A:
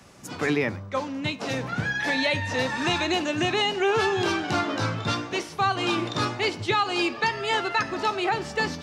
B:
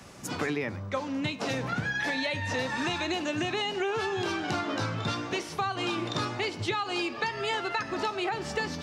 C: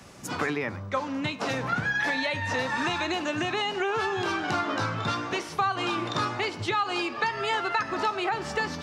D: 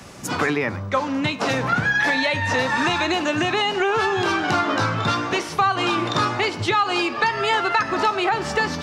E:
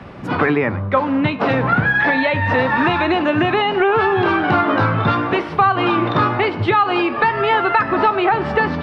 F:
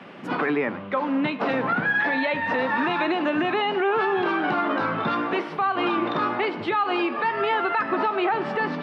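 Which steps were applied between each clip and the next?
downward compressor, threshold −30 dBFS, peak gain reduction 10.5 dB; level +2.5 dB
dynamic equaliser 1,200 Hz, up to +6 dB, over −45 dBFS, Q 1
soft clipping −14 dBFS, distortion −28 dB; level +7.5 dB
high-frequency loss of the air 440 metres; level +7 dB
high-pass filter 180 Hz 24 dB per octave; brickwall limiter −9.5 dBFS, peak gain reduction 6.5 dB; noise in a band 1,300–3,100 Hz −48 dBFS; level −5.5 dB

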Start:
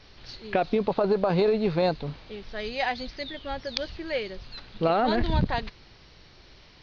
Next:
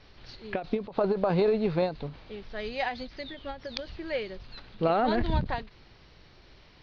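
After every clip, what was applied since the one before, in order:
high-shelf EQ 5,500 Hz −10.5 dB
every ending faded ahead of time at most 160 dB per second
level −1.5 dB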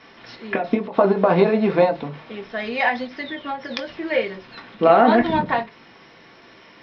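convolution reverb RT60 0.25 s, pre-delay 3 ms, DRR 2 dB
level +3.5 dB

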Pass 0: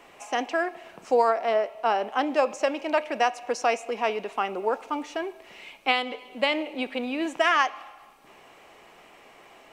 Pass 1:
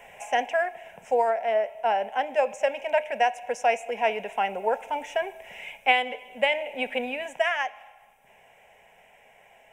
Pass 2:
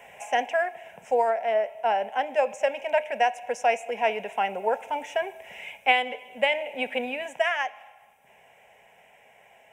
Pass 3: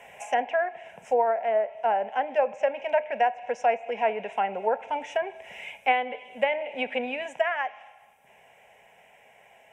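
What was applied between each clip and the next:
speech leveller within 4 dB 0.5 s; phaser with its sweep stopped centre 1,200 Hz, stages 6; level +2 dB
high-pass filter 65 Hz
treble cut that deepens with the level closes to 1,800 Hz, closed at −21.5 dBFS

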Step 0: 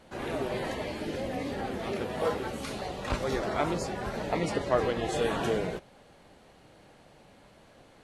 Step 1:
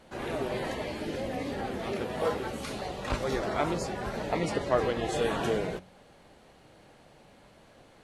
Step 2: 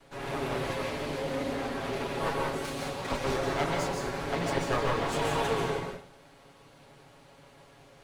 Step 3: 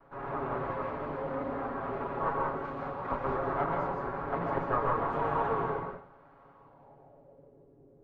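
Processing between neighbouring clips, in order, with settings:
hum removal 92.17 Hz, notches 3
lower of the sound and its delayed copy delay 7.2 ms; convolution reverb RT60 0.55 s, pre-delay 122 ms, DRR 0.5 dB
low-pass filter sweep 1,200 Hz → 380 Hz, 0:06.52–0:07.70; level −4 dB

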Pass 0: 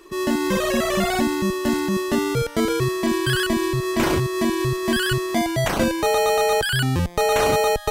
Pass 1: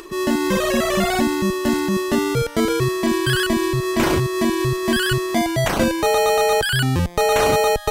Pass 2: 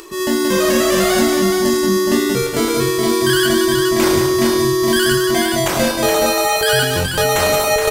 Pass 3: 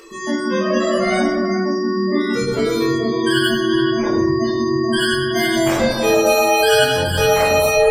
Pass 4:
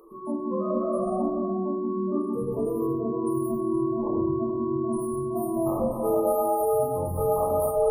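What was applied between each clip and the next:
upward compression, threshold −34 dBFS; level +2 dB
bass and treble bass −4 dB, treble +6 dB; double-tracking delay 21 ms −7 dB; multi-tap delay 81/178/421 ms −11.5/−6.5/−5.5 dB
gate on every frequency bin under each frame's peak −20 dB strong; low-shelf EQ 200 Hz −4.5 dB; rectangular room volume 160 cubic metres, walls mixed, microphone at 1.6 metres; level −6 dB
brick-wall band-stop 1,300–8,900 Hz; level −8.5 dB

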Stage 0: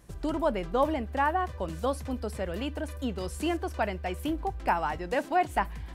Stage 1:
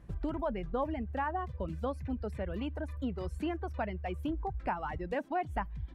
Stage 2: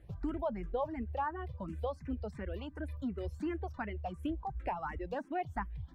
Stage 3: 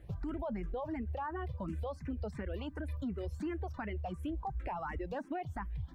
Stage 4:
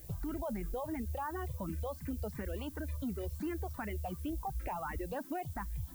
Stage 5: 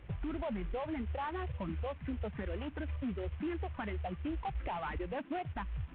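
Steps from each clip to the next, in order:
reverb reduction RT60 1.1 s; bass and treble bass +7 dB, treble −15 dB; downward compressor 2 to 1, threshold −30 dBFS, peak gain reduction 6 dB; level −3 dB
frequency shifter mixed with the dry sound +2.8 Hz
brickwall limiter −34.5 dBFS, peak gain reduction 11 dB; level +3.5 dB
background noise violet −55 dBFS
variable-slope delta modulation 16 kbit/s; level +1 dB

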